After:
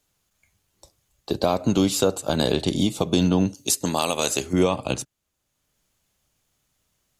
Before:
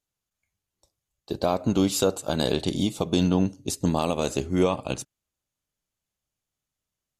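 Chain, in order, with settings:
0:03.54–0:04.53: spectral tilt +3.5 dB per octave
multiband upward and downward compressor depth 40%
level +2.5 dB

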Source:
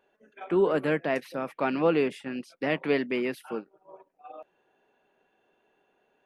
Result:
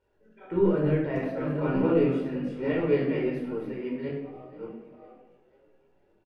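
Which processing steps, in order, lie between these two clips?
delay that plays each chunk backwards 584 ms, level −5 dB
high-shelf EQ 5,600 Hz +6 dB
surface crackle 350 per second −59 dBFS
RIAA equalisation playback
on a send: echo with shifted repeats 491 ms, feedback 52%, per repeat +39 Hz, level −21 dB
on the sum: rectangular room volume 2,900 cubic metres, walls furnished, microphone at 4.6 metres
micro pitch shift up and down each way 14 cents
level −6 dB

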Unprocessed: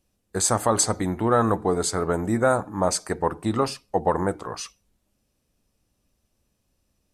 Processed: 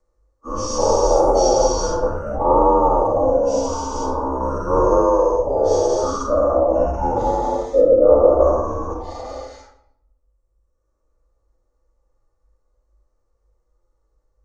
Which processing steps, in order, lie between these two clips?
every bin's largest magnitude spread in time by 240 ms
phase-vocoder stretch with locked phases 1.5×
reverb reduction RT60 1.1 s
wrong playback speed 45 rpm record played at 33 rpm
drawn EQ curve 120 Hz 0 dB, 190 Hz −19 dB, 340 Hz −10 dB, 550 Hz +8 dB, 820 Hz −2 dB, 1,200 Hz +5 dB, 1,800 Hz −13 dB, 3,400 Hz −26 dB, 5,900 Hz −11 dB, 14,000 Hz −25 dB
rectangular room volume 2,000 cubic metres, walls furnished, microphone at 2.6 metres
frequency shifter −51 Hz

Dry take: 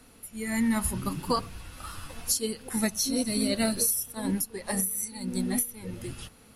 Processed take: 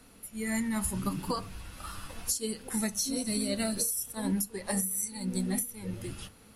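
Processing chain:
dynamic equaliser 7,800 Hz, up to +6 dB, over −45 dBFS, Q 1.8
downward compressor, threshold −26 dBFS, peak gain reduction 7.5 dB
convolution reverb, pre-delay 5 ms, DRR 12.5 dB
level −1.5 dB

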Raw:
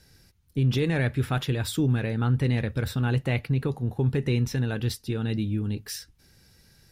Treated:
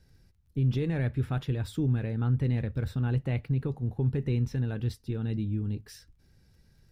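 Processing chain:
spectral tilt −2 dB per octave
surface crackle 19 per second −49 dBFS
level −8.5 dB

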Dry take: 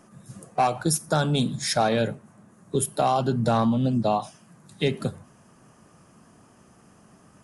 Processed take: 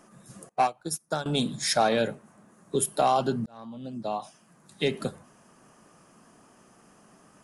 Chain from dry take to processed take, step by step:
parametric band 87 Hz −11.5 dB 1.8 octaves
0:00.49–0:01.26: expander for the loud parts 2.5 to 1, over −34 dBFS
0:03.46–0:04.95: fade in

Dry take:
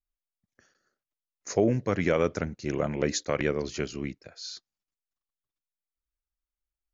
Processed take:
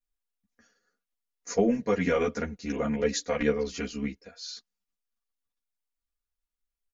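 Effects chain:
comb filter 4.2 ms, depth 94%
string-ensemble chorus

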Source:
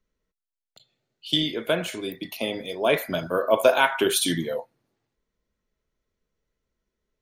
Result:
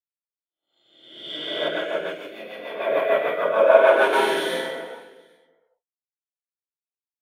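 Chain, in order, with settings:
peak hold with a rise ahead of every peak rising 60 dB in 1.34 s
parametric band 240 Hz −8.5 dB 0.95 octaves
reverse bouncing-ball delay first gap 50 ms, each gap 1.6×, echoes 5
reverb whose tail is shaped and stops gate 440 ms flat, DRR −6.5 dB
0:01.68–0:04.13: rotating-speaker cabinet horn 6.7 Hz
three-way crossover with the lows and the highs turned down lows −23 dB, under 240 Hz, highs −20 dB, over 2,600 Hz
downward expander −46 dBFS
multiband upward and downward expander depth 40%
level −7.5 dB

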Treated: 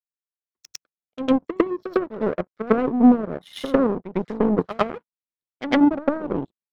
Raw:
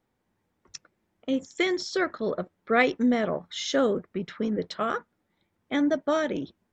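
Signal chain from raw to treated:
treble cut that deepens with the level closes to 350 Hz, closed at −22.5 dBFS
automatic gain control gain up to 14.5 dB
power curve on the samples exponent 2
backwards echo 103 ms −12 dB
level +1.5 dB

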